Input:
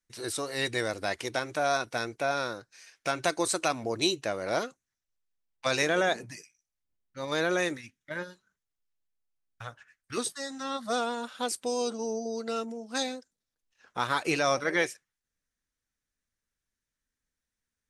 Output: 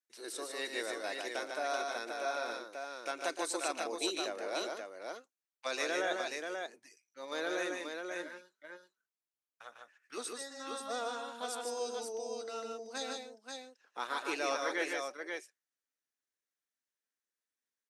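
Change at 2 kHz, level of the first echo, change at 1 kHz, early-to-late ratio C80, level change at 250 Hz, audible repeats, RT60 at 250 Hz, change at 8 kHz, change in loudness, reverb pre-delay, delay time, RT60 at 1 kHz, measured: −6.5 dB, −13.5 dB, −6.5 dB, no reverb audible, −9.5 dB, 3, no reverb audible, −6.5 dB, −7.5 dB, no reverb audible, 116 ms, no reverb audible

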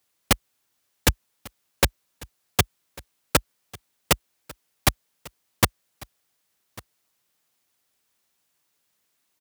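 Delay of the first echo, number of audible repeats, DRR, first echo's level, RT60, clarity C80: 1,147 ms, 1, no reverb audible, −22.5 dB, no reverb audible, no reverb audible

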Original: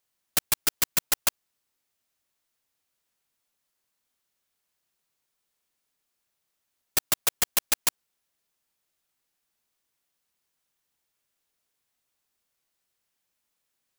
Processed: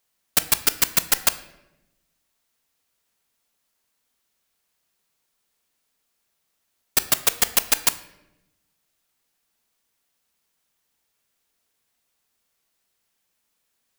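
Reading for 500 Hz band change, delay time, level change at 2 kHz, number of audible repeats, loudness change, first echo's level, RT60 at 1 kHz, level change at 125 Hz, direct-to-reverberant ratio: +5.5 dB, no echo audible, +5.5 dB, no echo audible, +5.0 dB, no echo audible, 0.80 s, +4.5 dB, 10.5 dB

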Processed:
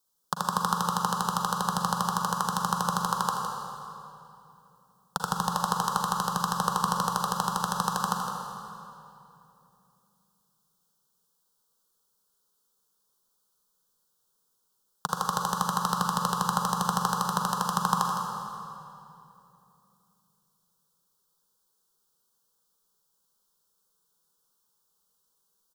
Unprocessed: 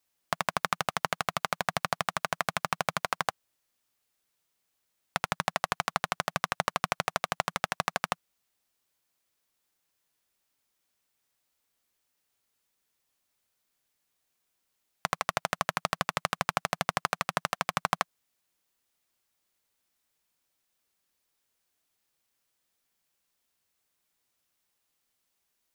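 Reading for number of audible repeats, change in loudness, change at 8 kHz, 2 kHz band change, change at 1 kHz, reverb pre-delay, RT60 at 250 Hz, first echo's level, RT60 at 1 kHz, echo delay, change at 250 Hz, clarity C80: 1, +3.0 dB, +5.0 dB, −5.5 dB, +5.0 dB, 37 ms, 3.1 s, −9.5 dB, 2.7 s, 161 ms, +9.5 dB, 1.5 dB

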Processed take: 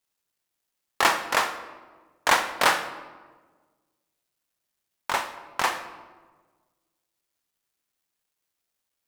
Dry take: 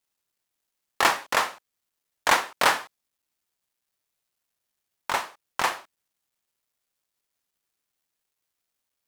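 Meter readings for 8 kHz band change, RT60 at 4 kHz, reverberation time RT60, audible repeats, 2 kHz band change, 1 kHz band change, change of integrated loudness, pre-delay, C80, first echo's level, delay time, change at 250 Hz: 0.0 dB, 0.85 s, 1.4 s, no echo audible, +0.5 dB, +0.5 dB, 0.0 dB, 34 ms, 12.5 dB, no echo audible, no echo audible, +1.0 dB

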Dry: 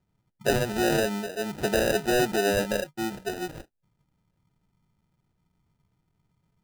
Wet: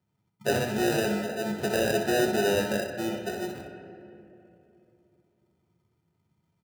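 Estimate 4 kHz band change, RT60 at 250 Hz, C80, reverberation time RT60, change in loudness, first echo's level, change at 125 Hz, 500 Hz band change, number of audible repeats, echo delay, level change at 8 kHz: −1.5 dB, 3.4 s, 7.0 dB, 2.8 s, −1.0 dB, −7.5 dB, −1.0 dB, −1.0 dB, 1, 62 ms, −2.0 dB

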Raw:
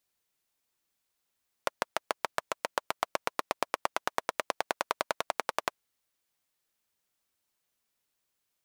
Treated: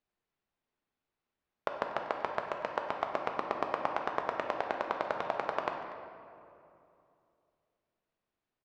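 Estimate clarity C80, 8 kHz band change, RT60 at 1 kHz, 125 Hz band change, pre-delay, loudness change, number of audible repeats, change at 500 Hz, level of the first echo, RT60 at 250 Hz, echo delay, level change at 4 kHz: 5.5 dB, below −20 dB, 2.5 s, +3.0 dB, 3 ms, −1.0 dB, 1, +1.5 dB, −17.0 dB, 3.2 s, 240 ms, −9.0 dB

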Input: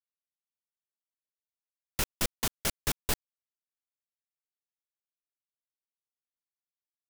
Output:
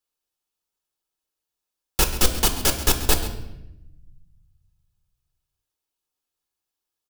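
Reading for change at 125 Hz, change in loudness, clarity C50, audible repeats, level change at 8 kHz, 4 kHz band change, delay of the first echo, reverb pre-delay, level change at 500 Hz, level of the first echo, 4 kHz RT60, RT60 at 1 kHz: +12.0 dB, +10.5 dB, 9.0 dB, 1, +11.0 dB, +11.0 dB, 135 ms, 5 ms, +12.0 dB, −14.5 dB, 0.70 s, 0.80 s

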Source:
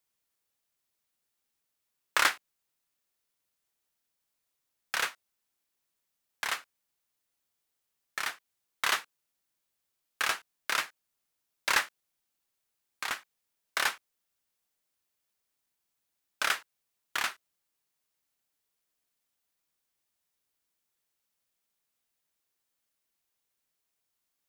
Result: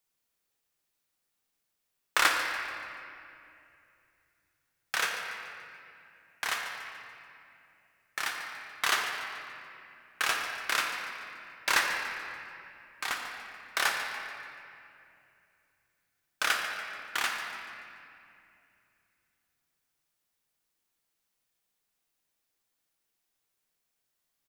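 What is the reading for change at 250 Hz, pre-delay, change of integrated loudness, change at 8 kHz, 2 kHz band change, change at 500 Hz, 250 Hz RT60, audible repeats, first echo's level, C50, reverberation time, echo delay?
+3.5 dB, 3 ms, 0.0 dB, +1.0 dB, +2.5 dB, +2.5 dB, 3.3 s, 1, −12.5 dB, 2.5 dB, 2.6 s, 144 ms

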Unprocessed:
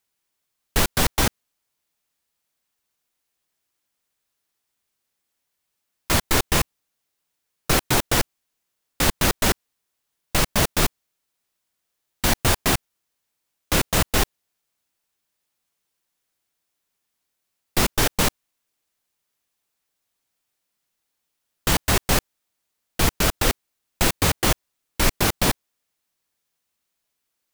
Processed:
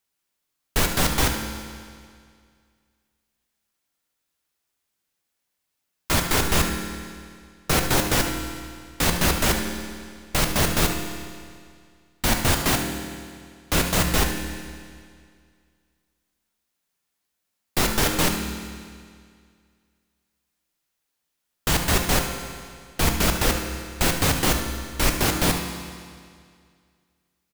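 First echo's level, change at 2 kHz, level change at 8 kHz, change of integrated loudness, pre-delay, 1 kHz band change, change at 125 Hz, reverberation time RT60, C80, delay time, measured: −10.5 dB, 0.0 dB, −0.5 dB, −1.0 dB, 6 ms, −0.5 dB, +0.5 dB, 2.1 s, 6.5 dB, 74 ms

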